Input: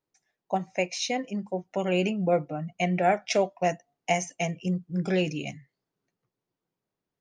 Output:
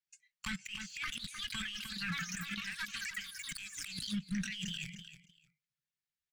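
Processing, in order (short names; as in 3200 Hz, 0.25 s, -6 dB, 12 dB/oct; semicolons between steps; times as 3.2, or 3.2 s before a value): spectral noise reduction 13 dB; varispeed +14%; tilt shelf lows -9.5 dB, about 1100 Hz; echoes that change speed 0.708 s, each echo +6 st, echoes 3; sample leveller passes 3; elliptic band-stop 170–1600 Hz, stop band 60 dB; bell 540 Hz -9 dB 2.8 oct; negative-ratio compressor -37 dBFS, ratio -1; LPF 2300 Hz 6 dB/oct; on a send: feedback echo 0.305 s, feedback 18%, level -16 dB; on the sum: limiter -32 dBFS, peak gain reduction 18 dB; gain +3 dB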